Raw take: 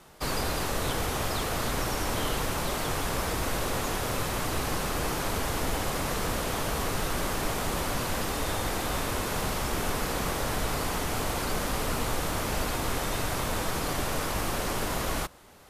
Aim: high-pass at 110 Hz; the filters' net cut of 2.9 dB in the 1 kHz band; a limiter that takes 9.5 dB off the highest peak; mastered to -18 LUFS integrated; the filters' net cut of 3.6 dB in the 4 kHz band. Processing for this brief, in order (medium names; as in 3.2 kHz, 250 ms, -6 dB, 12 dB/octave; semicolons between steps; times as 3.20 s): high-pass 110 Hz; peaking EQ 1 kHz -3.5 dB; peaking EQ 4 kHz -4.5 dB; trim +19 dB; peak limiter -9.5 dBFS